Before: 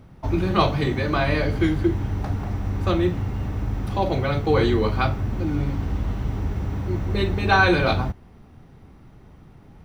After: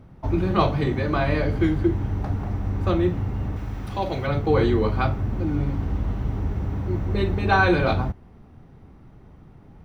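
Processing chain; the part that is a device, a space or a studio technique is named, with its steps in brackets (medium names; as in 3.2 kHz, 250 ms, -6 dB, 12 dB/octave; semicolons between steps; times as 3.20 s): behind a face mask (treble shelf 2.2 kHz -7.5 dB); 3.56–4.27 s: tilt shelf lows -5 dB, about 1.2 kHz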